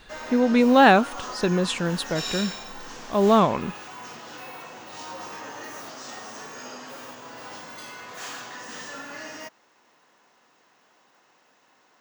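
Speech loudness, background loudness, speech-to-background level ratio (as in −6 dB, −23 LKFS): −21.0 LKFS, −36.5 LKFS, 15.5 dB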